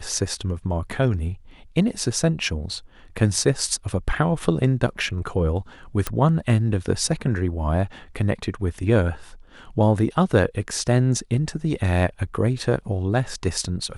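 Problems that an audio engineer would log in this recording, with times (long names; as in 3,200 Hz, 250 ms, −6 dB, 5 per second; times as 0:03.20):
0:06.07: click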